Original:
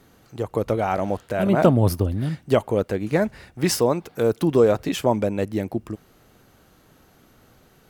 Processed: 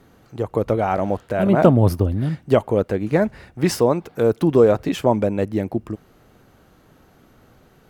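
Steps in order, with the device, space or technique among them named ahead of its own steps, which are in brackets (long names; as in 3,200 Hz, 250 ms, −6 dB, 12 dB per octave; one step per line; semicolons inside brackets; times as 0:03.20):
behind a face mask (high-shelf EQ 2,800 Hz −7.5 dB)
level +3 dB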